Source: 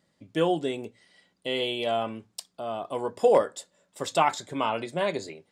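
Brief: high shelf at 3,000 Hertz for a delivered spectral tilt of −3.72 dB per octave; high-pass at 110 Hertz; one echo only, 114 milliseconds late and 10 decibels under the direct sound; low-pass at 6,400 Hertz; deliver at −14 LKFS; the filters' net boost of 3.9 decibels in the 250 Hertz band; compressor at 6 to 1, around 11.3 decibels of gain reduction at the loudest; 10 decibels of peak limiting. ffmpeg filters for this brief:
ffmpeg -i in.wav -af "highpass=110,lowpass=6400,equalizer=frequency=250:width_type=o:gain=5.5,highshelf=frequency=3000:gain=8,acompressor=threshold=-26dB:ratio=6,alimiter=limit=-24dB:level=0:latency=1,aecho=1:1:114:0.316,volume=21dB" out.wav

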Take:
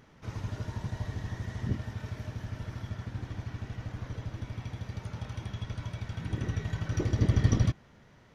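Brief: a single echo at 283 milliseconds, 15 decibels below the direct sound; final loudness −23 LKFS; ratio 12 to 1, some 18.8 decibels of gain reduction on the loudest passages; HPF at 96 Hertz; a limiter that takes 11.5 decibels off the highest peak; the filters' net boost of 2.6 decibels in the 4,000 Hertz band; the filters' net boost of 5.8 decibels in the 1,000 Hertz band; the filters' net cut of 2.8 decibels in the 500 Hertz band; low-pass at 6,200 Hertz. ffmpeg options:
ffmpeg -i in.wav -af "highpass=96,lowpass=6200,equalizer=frequency=500:width_type=o:gain=-6,equalizer=frequency=1000:width_type=o:gain=8.5,equalizer=frequency=4000:width_type=o:gain=3.5,acompressor=threshold=-41dB:ratio=12,alimiter=level_in=19dB:limit=-24dB:level=0:latency=1,volume=-19dB,aecho=1:1:283:0.178,volume=29dB" out.wav

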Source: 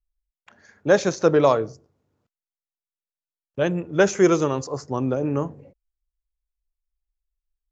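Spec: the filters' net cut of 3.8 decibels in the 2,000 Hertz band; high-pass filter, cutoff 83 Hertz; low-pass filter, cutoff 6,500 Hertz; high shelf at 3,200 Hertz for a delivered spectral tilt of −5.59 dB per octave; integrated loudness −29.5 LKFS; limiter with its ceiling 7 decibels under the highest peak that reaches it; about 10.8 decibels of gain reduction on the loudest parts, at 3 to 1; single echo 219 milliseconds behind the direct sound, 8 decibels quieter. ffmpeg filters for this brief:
ffmpeg -i in.wav -af "highpass=83,lowpass=6500,equalizer=frequency=2000:width_type=o:gain=-7.5,highshelf=frequency=3200:gain=6.5,acompressor=threshold=-27dB:ratio=3,alimiter=limit=-22dB:level=0:latency=1,aecho=1:1:219:0.398,volume=3dB" out.wav

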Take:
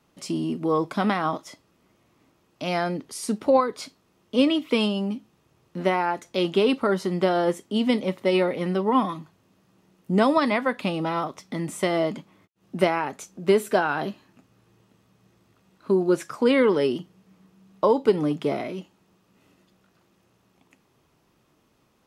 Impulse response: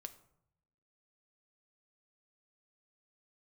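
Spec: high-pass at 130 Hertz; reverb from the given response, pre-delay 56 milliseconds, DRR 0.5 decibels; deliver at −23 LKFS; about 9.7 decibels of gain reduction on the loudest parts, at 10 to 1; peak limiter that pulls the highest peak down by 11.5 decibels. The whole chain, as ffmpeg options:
-filter_complex "[0:a]highpass=130,acompressor=threshold=-24dB:ratio=10,alimiter=limit=-24dB:level=0:latency=1,asplit=2[link_01][link_02];[1:a]atrim=start_sample=2205,adelay=56[link_03];[link_02][link_03]afir=irnorm=-1:irlink=0,volume=4.5dB[link_04];[link_01][link_04]amix=inputs=2:normalize=0,volume=8dB"

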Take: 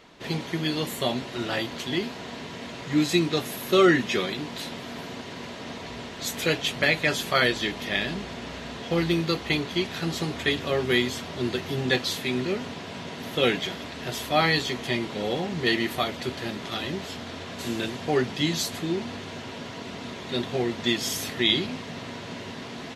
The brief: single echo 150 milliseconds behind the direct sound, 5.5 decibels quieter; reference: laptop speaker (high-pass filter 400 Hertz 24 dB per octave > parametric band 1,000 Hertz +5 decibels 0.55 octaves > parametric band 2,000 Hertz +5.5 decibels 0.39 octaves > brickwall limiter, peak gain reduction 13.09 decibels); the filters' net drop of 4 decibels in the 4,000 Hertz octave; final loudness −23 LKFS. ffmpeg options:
ffmpeg -i in.wav -af "highpass=frequency=400:width=0.5412,highpass=frequency=400:width=1.3066,equalizer=frequency=1000:width_type=o:width=0.55:gain=5,equalizer=frequency=2000:width_type=o:width=0.39:gain=5.5,equalizer=frequency=4000:width_type=o:gain=-5.5,aecho=1:1:150:0.531,volume=8.5dB,alimiter=limit=-12.5dB:level=0:latency=1" out.wav

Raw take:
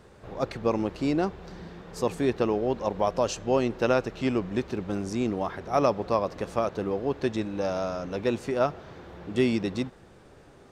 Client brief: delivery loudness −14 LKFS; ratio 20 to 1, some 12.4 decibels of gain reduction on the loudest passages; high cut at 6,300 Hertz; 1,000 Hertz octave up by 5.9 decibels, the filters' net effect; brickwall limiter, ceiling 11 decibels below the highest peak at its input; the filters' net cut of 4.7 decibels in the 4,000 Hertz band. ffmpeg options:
ffmpeg -i in.wav -af "lowpass=6300,equalizer=frequency=1000:width_type=o:gain=8,equalizer=frequency=4000:width_type=o:gain=-6,acompressor=threshold=-27dB:ratio=20,volume=23.5dB,alimiter=limit=-2.5dB:level=0:latency=1" out.wav

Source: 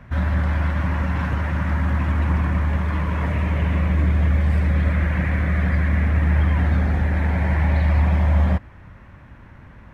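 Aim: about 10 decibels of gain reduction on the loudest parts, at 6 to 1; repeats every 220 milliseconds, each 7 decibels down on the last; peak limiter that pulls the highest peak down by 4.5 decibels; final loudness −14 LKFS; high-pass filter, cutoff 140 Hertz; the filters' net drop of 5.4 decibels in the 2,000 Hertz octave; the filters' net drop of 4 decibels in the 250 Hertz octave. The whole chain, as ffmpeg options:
ffmpeg -i in.wav -af "highpass=140,equalizer=frequency=250:width_type=o:gain=-4.5,equalizer=frequency=2000:width_type=o:gain=-6.5,acompressor=threshold=-34dB:ratio=6,alimiter=level_in=6dB:limit=-24dB:level=0:latency=1,volume=-6dB,aecho=1:1:220|440|660|880|1100:0.447|0.201|0.0905|0.0407|0.0183,volume=26dB" out.wav

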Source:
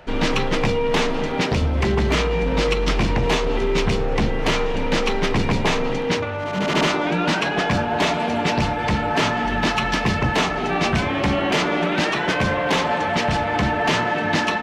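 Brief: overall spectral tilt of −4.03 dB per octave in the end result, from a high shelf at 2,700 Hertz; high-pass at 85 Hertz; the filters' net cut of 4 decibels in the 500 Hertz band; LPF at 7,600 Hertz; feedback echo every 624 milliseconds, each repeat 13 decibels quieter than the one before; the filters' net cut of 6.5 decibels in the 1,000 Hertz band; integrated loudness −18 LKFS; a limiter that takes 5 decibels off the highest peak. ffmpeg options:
ffmpeg -i in.wav -af "highpass=85,lowpass=7600,equalizer=frequency=500:width_type=o:gain=-3,equalizer=frequency=1000:width_type=o:gain=-7,highshelf=frequency=2700:gain=-3.5,alimiter=limit=-16dB:level=0:latency=1,aecho=1:1:624|1248|1872:0.224|0.0493|0.0108,volume=7dB" out.wav

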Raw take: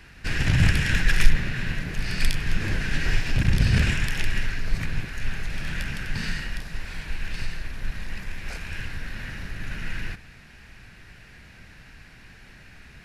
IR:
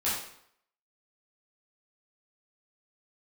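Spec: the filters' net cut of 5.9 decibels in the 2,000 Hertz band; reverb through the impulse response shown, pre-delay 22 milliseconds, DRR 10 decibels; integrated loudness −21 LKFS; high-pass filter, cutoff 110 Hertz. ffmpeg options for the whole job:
-filter_complex "[0:a]highpass=110,equalizer=frequency=2000:width_type=o:gain=-7.5,asplit=2[link_01][link_02];[1:a]atrim=start_sample=2205,adelay=22[link_03];[link_02][link_03]afir=irnorm=-1:irlink=0,volume=-18.5dB[link_04];[link_01][link_04]amix=inputs=2:normalize=0,volume=11dB"

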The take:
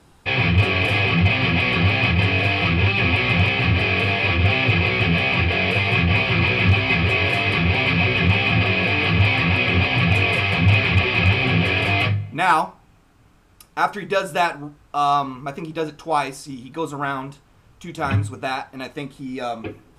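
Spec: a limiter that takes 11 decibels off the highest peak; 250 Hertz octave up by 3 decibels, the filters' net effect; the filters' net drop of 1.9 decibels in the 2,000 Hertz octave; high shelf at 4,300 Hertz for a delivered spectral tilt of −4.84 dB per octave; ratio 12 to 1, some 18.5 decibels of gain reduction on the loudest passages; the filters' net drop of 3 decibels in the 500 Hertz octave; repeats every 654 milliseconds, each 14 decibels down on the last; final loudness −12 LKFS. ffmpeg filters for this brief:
ffmpeg -i in.wav -af "equalizer=frequency=250:width_type=o:gain=6,equalizer=frequency=500:width_type=o:gain=-6,equalizer=frequency=2000:width_type=o:gain=-4.5,highshelf=frequency=4300:gain=7.5,acompressor=threshold=-31dB:ratio=12,alimiter=level_in=6.5dB:limit=-24dB:level=0:latency=1,volume=-6.5dB,aecho=1:1:654|1308:0.2|0.0399,volume=26.5dB" out.wav

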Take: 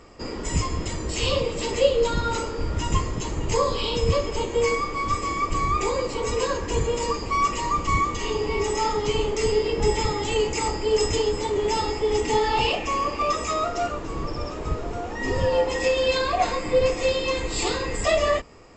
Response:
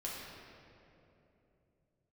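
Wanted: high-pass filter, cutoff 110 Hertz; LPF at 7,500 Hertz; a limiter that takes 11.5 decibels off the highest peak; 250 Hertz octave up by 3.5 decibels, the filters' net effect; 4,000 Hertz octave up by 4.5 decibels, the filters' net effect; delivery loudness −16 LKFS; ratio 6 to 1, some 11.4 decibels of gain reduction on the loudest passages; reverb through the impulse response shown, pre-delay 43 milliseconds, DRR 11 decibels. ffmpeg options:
-filter_complex "[0:a]highpass=110,lowpass=7500,equalizer=frequency=250:width_type=o:gain=5,equalizer=frequency=4000:width_type=o:gain=6.5,acompressor=threshold=-24dB:ratio=6,alimiter=level_in=1dB:limit=-24dB:level=0:latency=1,volume=-1dB,asplit=2[link_01][link_02];[1:a]atrim=start_sample=2205,adelay=43[link_03];[link_02][link_03]afir=irnorm=-1:irlink=0,volume=-12.5dB[link_04];[link_01][link_04]amix=inputs=2:normalize=0,volume=16.5dB"

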